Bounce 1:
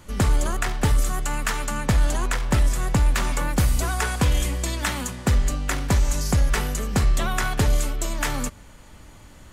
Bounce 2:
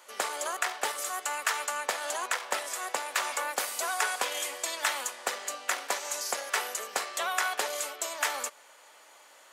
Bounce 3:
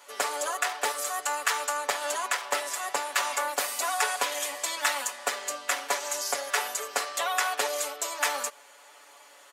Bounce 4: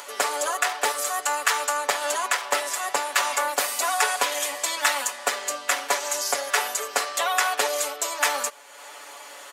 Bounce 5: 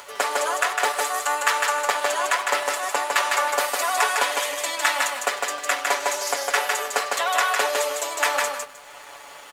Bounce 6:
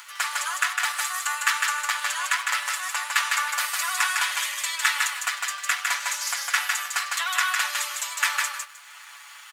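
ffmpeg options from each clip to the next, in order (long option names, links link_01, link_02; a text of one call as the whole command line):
ffmpeg -i in.wav -af "highpass=frequency=520:width=0.5412,highpass=frequency=520:width=1.3066,volume=-2dB" out.wav
ffmpeg -i in.wav -af "aecho=1:1:7:0.88" out.wav
ffmpeg -i in.wav -af "acompressor=mode=upward:threshold=-38dB:ratio=2.5,volume=4.5dB" out.wav
ffmpeg -i in.wav -af "bass=frequency=250:gain=-5,treble=frequency=4000:gain=-5,aecho=1:1:155|310|465:0.708|0.149|0.0312,aeval=exprs='sgn(val(0))*max(abs(val(0))-0.00299,0)':channel_layout=same,volume=1.5dB" out.wav
ffmpeg -i in.wav -af "highpass=frequency=1200:width=0.5412,highpass=frequency=1200:width=1.3066" out.wav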